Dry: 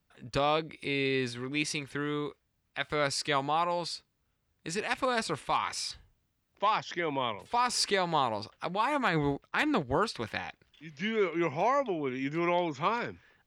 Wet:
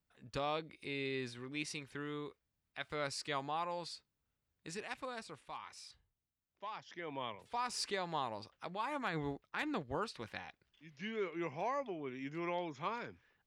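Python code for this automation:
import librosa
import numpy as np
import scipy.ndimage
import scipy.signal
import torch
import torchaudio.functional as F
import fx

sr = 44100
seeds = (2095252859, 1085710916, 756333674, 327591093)

y = fx.gain(x, sr, db=fx.line((4.69, -10.0), (5.34, -18.0), (6.7, -18.0), (7.21, -10.5)))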